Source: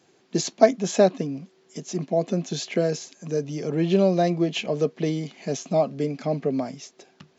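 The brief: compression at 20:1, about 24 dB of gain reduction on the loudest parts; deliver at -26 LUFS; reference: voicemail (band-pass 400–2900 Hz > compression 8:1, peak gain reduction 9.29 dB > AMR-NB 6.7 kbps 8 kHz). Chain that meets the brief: compression 20:1, threshold -33 dBFS; band-pass 400–2900 Hz; compression 8:1, threshold -40 dBFS; trim +22 dB; AMR-NB 6.7 kbps 8 kHz

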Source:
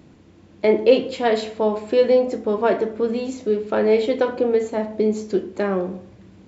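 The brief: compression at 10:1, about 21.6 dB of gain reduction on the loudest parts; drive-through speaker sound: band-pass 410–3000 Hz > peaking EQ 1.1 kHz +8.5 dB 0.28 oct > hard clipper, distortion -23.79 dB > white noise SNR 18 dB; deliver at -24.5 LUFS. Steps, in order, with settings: compression 10:1, threshold -31 dBFS; band-pass 410–3000 Hz; peaking EQ 1.1 kHz +8.5 dB 0.28 oct; hard clipper -26.5 dBFS; white noise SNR 18 dB; trim +13.5 dB

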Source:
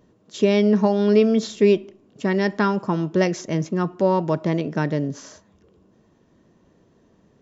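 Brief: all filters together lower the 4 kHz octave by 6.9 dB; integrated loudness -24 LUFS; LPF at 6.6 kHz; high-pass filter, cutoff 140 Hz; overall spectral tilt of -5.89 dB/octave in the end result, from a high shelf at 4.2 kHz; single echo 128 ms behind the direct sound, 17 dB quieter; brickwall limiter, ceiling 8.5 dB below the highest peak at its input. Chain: high-pass 140 Hz; low-pass 6.6 kHz; peaking EQ 4 kHz -5.5 dB; treble shelf 4.2 kHz -6 dB; peak limiter -14 dBFS; delay 128 ms -17 dB; trim +1 dB

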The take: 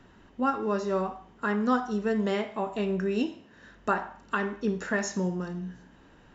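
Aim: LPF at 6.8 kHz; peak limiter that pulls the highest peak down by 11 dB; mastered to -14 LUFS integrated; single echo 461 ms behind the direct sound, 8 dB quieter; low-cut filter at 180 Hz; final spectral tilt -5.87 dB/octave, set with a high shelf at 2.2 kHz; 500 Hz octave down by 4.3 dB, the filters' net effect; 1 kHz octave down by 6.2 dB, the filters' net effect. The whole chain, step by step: high-pass 180 Hz; low-pass 6.8 kHz; peaking EQ 500 Hz -4 dB; peaking EQ 1 kHz -6 dB; treble shelf 2.2 kHz -5 dB; peak limiter -27 dBFS; delay 461 ms -8 dB; trim +23 dB

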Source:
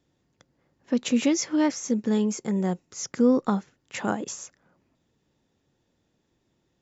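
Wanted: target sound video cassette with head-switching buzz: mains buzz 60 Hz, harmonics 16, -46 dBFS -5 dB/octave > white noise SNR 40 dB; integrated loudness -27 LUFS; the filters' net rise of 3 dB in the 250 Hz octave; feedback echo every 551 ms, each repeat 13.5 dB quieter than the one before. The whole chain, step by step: peaking EQ 250 Hz +3.5 dB; feedback delay 551 ms, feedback 21%, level -13.5 dB; mains buzz 60 Hz, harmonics 16, -46 dBFS -5 dB/octave; white noise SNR 40 dB; trim -3.5 dB

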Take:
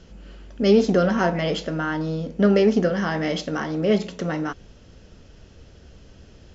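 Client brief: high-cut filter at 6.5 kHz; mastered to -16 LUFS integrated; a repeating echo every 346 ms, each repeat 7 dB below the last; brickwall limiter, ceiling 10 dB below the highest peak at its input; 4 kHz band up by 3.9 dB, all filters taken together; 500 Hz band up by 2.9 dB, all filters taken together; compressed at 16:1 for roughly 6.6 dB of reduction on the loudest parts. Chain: low-pass 6.5 kHz; peaking EQ 500 Hz +3.5 dB; peaking EQ 4 kHz +6 dB; compression 16:1, threshold -16 dBFS; peak limiter -18.5 dBFS; feedback delay 346 ms, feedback 45%, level -7 dB; trim +10.5 dB

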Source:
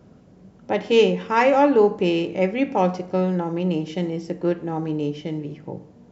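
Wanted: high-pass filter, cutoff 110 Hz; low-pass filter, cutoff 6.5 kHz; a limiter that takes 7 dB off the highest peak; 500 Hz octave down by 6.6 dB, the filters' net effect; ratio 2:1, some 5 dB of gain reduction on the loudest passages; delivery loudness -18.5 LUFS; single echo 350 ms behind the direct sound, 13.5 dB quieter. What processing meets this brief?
high-pass 110 Hz; low-pass 6.5 kHz; peaking EQ 500 Hz -8 dB; compression 2:1, threshold -25 dBFS; peak limiter -20 dBFS; delay 350 ms -13.5 dB; trim +12 dB

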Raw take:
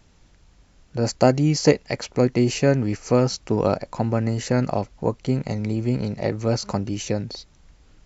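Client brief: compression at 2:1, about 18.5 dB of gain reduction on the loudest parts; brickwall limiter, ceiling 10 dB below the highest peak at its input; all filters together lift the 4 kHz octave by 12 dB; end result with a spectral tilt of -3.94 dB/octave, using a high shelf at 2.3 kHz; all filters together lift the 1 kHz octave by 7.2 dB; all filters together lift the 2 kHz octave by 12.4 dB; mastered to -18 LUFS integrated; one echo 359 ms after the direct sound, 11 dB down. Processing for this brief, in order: peaking EQ 1 kHz +6.5 dB; peaking EQ 2 kHz +8.5 dB; treble shelf 2.3 kHz +6 dB; peaking EQ 4 kHz +7 dB; compression 2:1, threshold -43 dBFS; peak limiter -23.5 dBFS; delay 359 ms -11 dB; trim +18 dB

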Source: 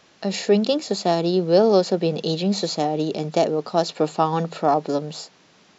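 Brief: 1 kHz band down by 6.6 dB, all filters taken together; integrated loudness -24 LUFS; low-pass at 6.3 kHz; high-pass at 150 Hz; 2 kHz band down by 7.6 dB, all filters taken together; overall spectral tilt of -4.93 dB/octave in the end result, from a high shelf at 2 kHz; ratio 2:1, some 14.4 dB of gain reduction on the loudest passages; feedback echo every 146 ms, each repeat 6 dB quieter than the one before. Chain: high-pass 150 Hz; low-pass 6.3 kHz; peaking EQ 1 kHz -8.5 dB; treble shelf 2 kHz -6 dB; peaking EQ 2 kHz -3.5 dB; compression 2:1, threshold -41 dBFS; feedback delay 146 ms, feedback 50%, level -6 dB; trim +11 dB

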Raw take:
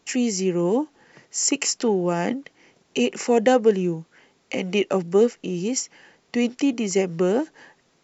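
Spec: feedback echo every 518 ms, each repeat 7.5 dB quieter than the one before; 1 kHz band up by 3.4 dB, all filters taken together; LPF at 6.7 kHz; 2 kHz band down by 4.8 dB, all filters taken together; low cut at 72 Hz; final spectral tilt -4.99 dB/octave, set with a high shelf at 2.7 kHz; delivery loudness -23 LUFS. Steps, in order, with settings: high-pass 72 Hz; low-pass 6.7 kHz; peaking EQ 1 kHz +6.5 dB; peaking EQ 2 kHz -5.5 dB; treble shelf 2.7 kHz -5 dB; feedback delay 518 ms, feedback 42%, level -7.5 dB; trim -0.5 dB

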